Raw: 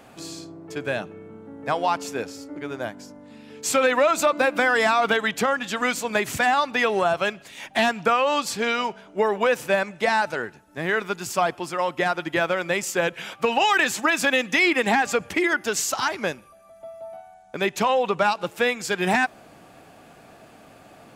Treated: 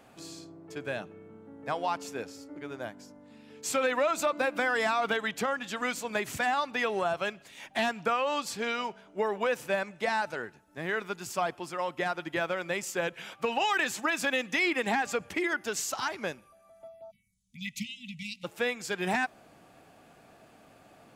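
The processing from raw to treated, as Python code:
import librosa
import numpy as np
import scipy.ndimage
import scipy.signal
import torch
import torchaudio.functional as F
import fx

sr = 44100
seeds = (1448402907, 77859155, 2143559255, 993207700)

y = fx.spec_erase(x, sr, start_s=17.11, length_s=1.33, low_hz=250.0, high_hz=1900.0)
y = fx.env_phaser(y, sr, low_hz=290.0, high_hz=2000.0, full_db=-35.0, at=(16.87, 17.64), fade=0.02)
y = y * librosa.db_to_amplitude(-8.0)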